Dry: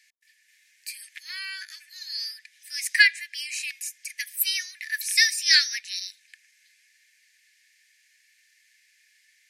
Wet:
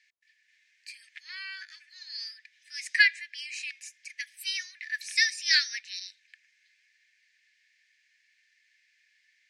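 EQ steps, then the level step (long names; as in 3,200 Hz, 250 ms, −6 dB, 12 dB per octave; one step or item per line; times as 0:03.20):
dynamic equaliser 9,700 Hz, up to +6 dB, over −39 dBFS, Q 0.75
high-frequency loss of the air 130 metres
−2.5 dB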